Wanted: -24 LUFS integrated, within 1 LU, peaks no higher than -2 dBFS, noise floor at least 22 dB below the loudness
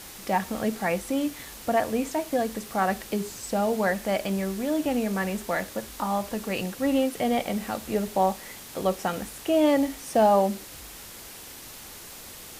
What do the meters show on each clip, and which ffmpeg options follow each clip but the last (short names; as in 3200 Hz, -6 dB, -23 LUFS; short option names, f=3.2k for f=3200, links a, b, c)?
noise floor -43 dBFS; noise floor target -49 dBFS; loudness -26.5 LUFS; peak -9.5 dBFS; loudness target -24.0 LUFS
-> -af "afftdn=nr=6:nf=-43"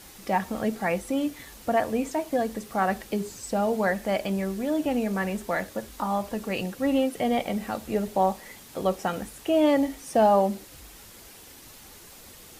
noise floor -48 dBFS; noise floor target -49 dBFS
-> -af "afftdn=nr=6:nf=-48"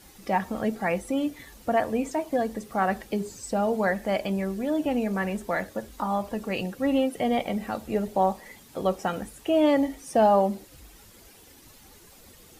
noise floor -52 dBFS; loudness -27.0 LUFS; peak -10.0 dBFS; loudness target -24.0 LUFS
-> -af "volume=3dB"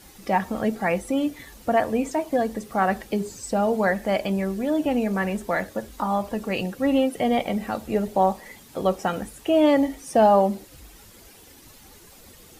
loudness -24.0 LUFS; peak -7.0 dBFS; noise floor -49 dBFS